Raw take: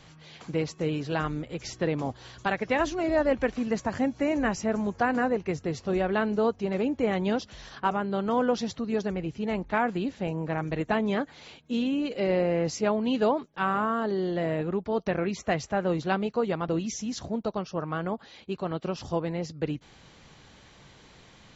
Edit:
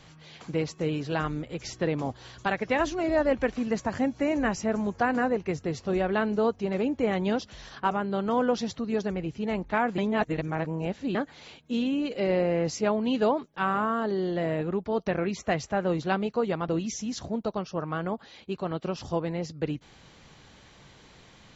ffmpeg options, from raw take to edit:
ffmpeg -i in.wav -filter_complex "[0:a]asplit=3[link_01][link_02][link_03];[link_01]atrim=end=9.982[link_04];[link_02]atrim=start=9.978:end=11.152,asetpts=PTS-STARTPTS,areverse[link_05];[link_03]atrim=start=11.148[link_06];[link_04][link_05]acrossfade=duration=0.004:curve1=hsin:curve2=hsin[link_07];[link_07][link_06]acrossfade=duration=0.004:curve1=hsin:curve2=hsin" out.wav

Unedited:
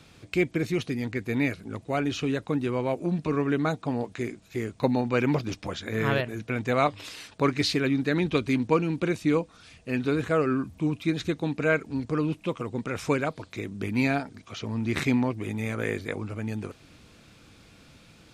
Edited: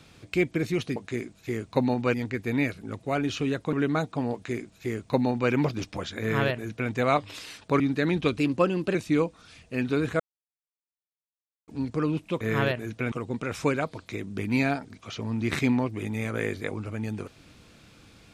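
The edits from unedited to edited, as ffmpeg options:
ffmpeg -i in.wav -filter_complex "[0:a]asplit=11[link_01][link_02][link_03][link_04][link_05][link_06][link_07][link_08][link_09][link_10][link_11];[link_01]atrim=end=0.962[link_12];[link_02]atrim=start=4.028:end=5.212[link_13];[link_03]atrim=start=0.958:end=2.552[link_14];[link_04]atrim=start=3.428:end=7.502[link_15];[link_05]atrim=start=7.888:end=8.474[link_16];[link_06]atrim=start=8.47:end=9.1,asetpts=PTS-STARTPTS,asetrate=48951,aresample=44100[link_17];[link_07]atrim=start=9.096:end=10.35,asetpts=PTS-STARTPTS,afade=type=out:start_time=1.25:duration=0.004:curve=hsin[link_18];[link_08]atrim=start=10.35:end=11.83,asetpts=PTS-STARTPTS,volume=0[link_19];[link_09]atrim=start=11.83:end=12.562,asetpts=PTS-STARTPTS,afade=type=in:duration=0.004:curve=hsin[link_20];[link_10]atrim=start=5.898:end=6.612[link_21];[link_11]atrim=start=12.558[link_22];[link_12][link_13]acrossfade=duration=0.004:curve1=hsin:curve2=hsin[link_23];[link_23][link_14]acrossfade=duration=0.004:curve1=hsin:curve2=hsin[link_24];[link_24][link_15]acrossfade=duration=0.004:curve1=hsin:curve2=hsin[link_25];[link_25][link_16]acrossfade=duration=0.004:curve1=hsin:curve2=hsin[link_26];[link_26][link_17]acrossfade=duration=0.004:curve1=hsin:curve2=hsin[link_27];[link_18][link_19][link_20]concat=n=3:v=0:a=1[link_28];[link_27][link_28]acrossfade=duration=0.004:curve1=hsin:curve2=hsin[link_29];[link_29][link_21]acrossfade=duration=0.004:curve1=hsin:curve2=hsin[link_30];[link_30][link_22]acrossfade=duration=0.004:curve1=hsin:curve2=hsin" out.wav

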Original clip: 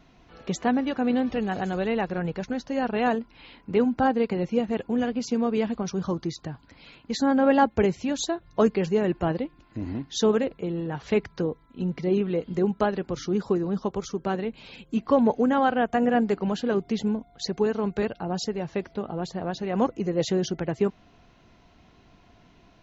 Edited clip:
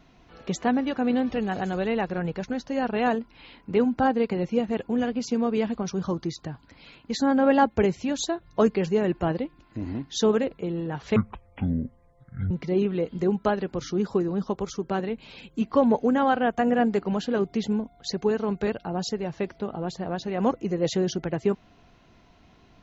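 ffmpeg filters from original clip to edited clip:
ffmpeg -i in.wav -filter_complex "[0:a]asplit=3[link_01][link_02][link_03];[link_01]atrim=end=11.164[link_04];[link_02]atrim=start=11.16:end=11.86,asetpts=PTS-STARTPTS,asetrate=22932,aresample=44100,atrim=end_sample=59365,asetpts=PTS-STARTPTS[link_05];[link_03]atrim=start=11.856[link_06];[link_04][link_05]acrossfade=duration=0.004:curve1=hsin:curve2=hsin[link_07];[link_07][link_06]acrossfade=duration=0.004:curve1=hsin:curve2=hsin" out.wav

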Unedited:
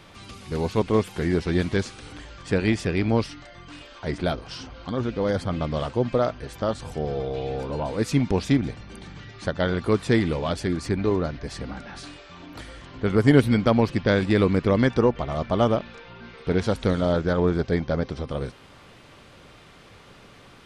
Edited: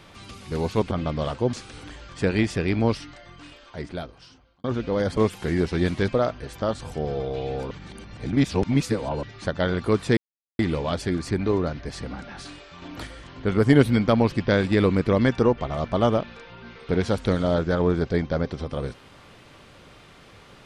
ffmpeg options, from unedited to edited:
ffmpeg -i in.wav -filter_complex "[0:a]asplit=11[link_01][link_02][link_03][link_04][link_05][link_06][link_07][link_08][link_09][link_10][link_11];[link_01]atrim=end=0.912[link_12];[link_02]atrim=start=5.458:end=6.082[link_13];[link_03]atrim=start=1.818:end=4.93,asetpts=PTS-STARTPTS,afade=type=out:start_time=1.522:duration=1.59[link_14];[link_04]atrim=start=4.93:end=5.462,asetpts=PTS-STARTPTS,afade=type=in:duration=0.004:curve=hsin[link_15];[link_05]atrim=start=0.908:end=1.822[link_16];[link_06]atrim=start=6.078:end=7.712[link_17];[link_07]atrim=start=7.708:end=9.232,asetpts=PTS-STARTPTS,areverse[link_18];[link_08]atrim=start=9.228:end=10.17,asetpts=PTS-STARTPTS,afade=type=out:start_time=0.938:duration=0.004:curve=hsin,apad=pad_dur=0.42[link_19];[link_09]atrim=start=10.17:end=12.402,asetpts=PTS-STARTPTS,afade=type=in:duration=0.004:curve=hsin[link_20];[link_10]atrim=start=12.398:end=12.652,asetpts=PTS-STARTPTS,volume=3.5dB[link_21];[link_11]atrim=start=12.648[link_22];[link_12][link_13]acrossfade=duration=0.004:curve1=hsin:curve2=hsin[link_23];[link_14][link_15]concat=n=2:v=0:a=1[link_24];[link_23][link_24]acrossfade=duration=0.004:curve1=hsin:curve2=hsin[link_25];[link_25][link_16]acrossfade=duration=0.004:curve1=hsin:curve2=hsin[link_26];[link_26][link_17]acrossfade=duration=0.004:curve1=hsin:curve2=hsin[link_27];[link_27][link_18]acrossfade=duration=0.004:curve1=hsin:curve2=hsin[link_28];[link_19][link_20]concat=n=2:v=0:a=1[link_29];[link_28][link_29]acrossfade=duration=0.004:curve1=hsin:curve2=hsin[link_30];[link_30][link_21]acrossfade=duration=0.004:curve1=hsin:curve2=hsin[link_31];[link_31][link_22]acrossfade=duration=0.004:curve1=hsin:curve2=hsin" out.wav

